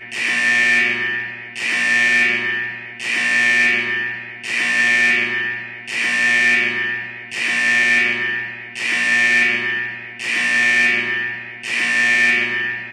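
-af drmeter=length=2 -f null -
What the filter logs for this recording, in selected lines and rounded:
Channel 1: DR: 9.9
Overall DR: 9.9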